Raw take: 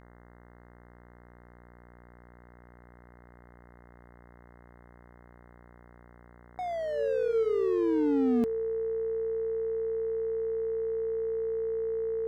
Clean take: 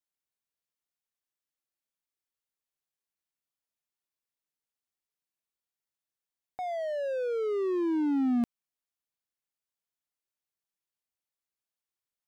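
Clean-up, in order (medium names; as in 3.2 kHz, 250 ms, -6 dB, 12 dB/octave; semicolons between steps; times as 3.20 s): de-hum 59.9 Hz, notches 35; band-stop 450 Hz, Q 30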